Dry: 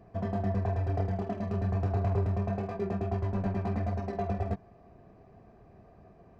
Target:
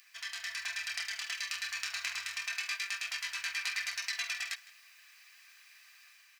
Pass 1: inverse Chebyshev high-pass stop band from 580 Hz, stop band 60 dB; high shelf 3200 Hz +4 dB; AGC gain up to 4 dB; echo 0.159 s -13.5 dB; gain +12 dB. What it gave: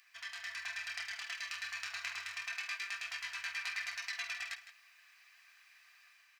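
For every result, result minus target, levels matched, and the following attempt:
echo-to-direct +7 dB; 8000 Hz band -4.0 dB
inverse Chebyshev high-pass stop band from 580 Hz, stop band 60 dB; high shelf 3200 Hz +4 dB; AGC gain up to 4 dB; echo 0.159 s -20.5 dB; gain +12 dB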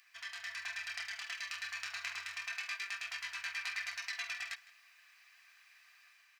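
8000 Hz band -4.0 dB
inverse Chebyshev high-pass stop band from 580 Hz, stop band 60 dB; high shelf 3200 Hz +14.5 dB; AGC gain up to 4 dB; echo 0.159 s -20.5 dB; gain +12 dB

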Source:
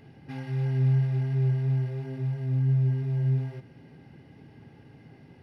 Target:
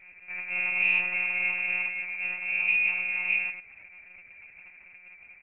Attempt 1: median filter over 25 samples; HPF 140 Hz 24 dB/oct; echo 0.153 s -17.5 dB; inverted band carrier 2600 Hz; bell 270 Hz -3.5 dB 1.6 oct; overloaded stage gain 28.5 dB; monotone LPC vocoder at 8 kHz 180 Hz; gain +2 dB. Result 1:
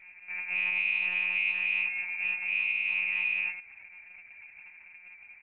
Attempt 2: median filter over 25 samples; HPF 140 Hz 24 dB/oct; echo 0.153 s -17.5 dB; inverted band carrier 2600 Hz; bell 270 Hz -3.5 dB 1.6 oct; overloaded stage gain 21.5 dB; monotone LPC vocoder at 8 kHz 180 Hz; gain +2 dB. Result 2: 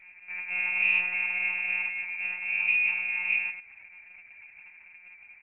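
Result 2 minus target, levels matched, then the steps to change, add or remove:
250 Hz band -5.0 dB
change: bell 270 Hz +7.5 dB 1.6 oct

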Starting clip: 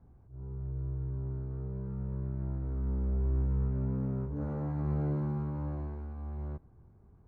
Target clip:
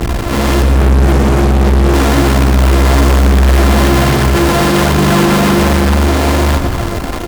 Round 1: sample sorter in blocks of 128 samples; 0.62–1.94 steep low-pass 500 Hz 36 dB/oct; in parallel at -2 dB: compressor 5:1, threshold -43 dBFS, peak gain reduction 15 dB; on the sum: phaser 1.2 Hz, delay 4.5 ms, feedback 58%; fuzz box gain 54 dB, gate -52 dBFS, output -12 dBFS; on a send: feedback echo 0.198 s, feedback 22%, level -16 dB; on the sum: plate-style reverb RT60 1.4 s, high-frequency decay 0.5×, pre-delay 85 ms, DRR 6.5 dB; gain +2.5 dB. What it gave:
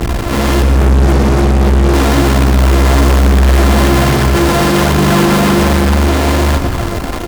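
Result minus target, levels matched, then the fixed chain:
compressor: peak gain reduction +8 dB
sample sorter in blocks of 128 samples; 0.62–1.94 steep low-pass 500 Hz 36 dB/oct; in parallel at -2 dB: compressor 5:1, threshold -33 dBFS, peak gain reduction 7 dB; on the sum: phaser 1.2 Hz, delay 4.5 ms, feedback 58%; fuzz box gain 54 dB, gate -52 dBFS, output -12 dBFS; on a send: feedback echo 0.198 s, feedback 22%, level -16 dB; on the sum: plate-style reverb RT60 1.4 s, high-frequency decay 0.5×, pre-delay 85 ms, DRR 6.5 dB; gain +2.5 dB

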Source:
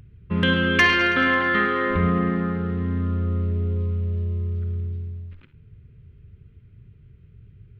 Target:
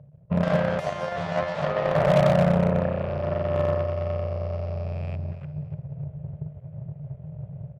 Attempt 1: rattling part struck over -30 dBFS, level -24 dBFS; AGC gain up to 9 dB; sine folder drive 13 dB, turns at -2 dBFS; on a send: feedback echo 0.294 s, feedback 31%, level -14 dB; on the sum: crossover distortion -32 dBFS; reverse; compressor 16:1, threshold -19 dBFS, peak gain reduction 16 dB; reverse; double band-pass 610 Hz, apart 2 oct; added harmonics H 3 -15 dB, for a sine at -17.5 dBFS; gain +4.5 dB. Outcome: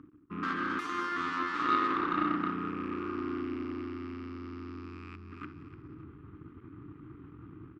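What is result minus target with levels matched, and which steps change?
500 Hz band -11.0 dB; compressor: peak gain reduction +8.5 dB
change: compressor 16:1, threshold -10 dBFS, peak gain reduction 7.5 dB; change: double band-pass 300 Hz, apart 2 oct

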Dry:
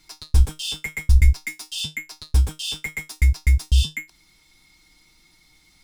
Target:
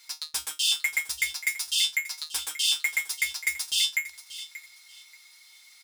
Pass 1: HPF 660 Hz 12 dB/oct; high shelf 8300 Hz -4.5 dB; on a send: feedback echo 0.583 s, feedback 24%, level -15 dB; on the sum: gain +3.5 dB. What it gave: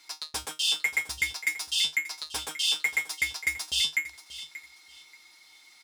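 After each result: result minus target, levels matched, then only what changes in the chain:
500 Hz band +12.0 dB; 8000 Hz band -3.0 dB
change: HPF 1300 Hz 12 dB/oct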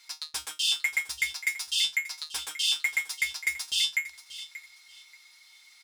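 8000 Hz band -2.5 dB
change: high shelf 8300 Hz +5 dB

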